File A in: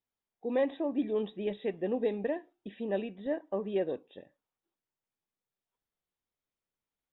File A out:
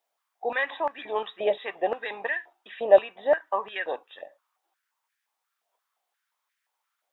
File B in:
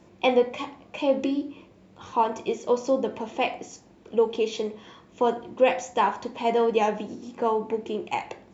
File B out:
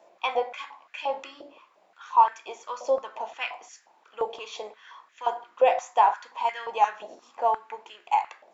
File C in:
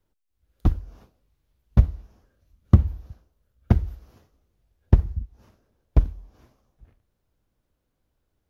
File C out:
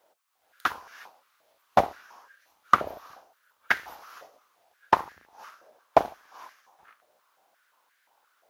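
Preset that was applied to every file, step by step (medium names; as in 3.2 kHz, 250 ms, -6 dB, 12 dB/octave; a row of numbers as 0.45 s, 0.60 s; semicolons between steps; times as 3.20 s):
octave divider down 2 oct, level -5 dB; step-sequenced high-pass 5.7 Hz 650–1700 Hz; normalise loudness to -27 LUFS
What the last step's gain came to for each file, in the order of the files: +9.5 dB, -4.5 dB, +12.0 dB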